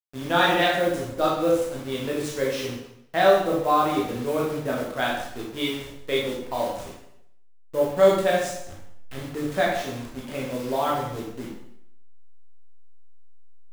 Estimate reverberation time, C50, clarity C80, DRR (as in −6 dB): 0.75 s, 2.0 dB, 5.5 dB, −4.0 dB